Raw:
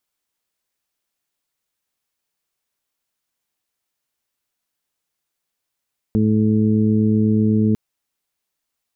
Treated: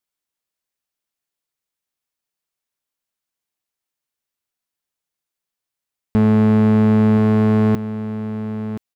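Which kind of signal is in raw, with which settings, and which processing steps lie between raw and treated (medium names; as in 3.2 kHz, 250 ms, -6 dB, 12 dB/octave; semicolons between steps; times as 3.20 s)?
steady additive tone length 1.60 s, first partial 108 Hz, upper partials 4/-5.5/-6.5 dB, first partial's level -19 dB
waveshaping leveller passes 3; on a send: delay 1025 ms -12 dB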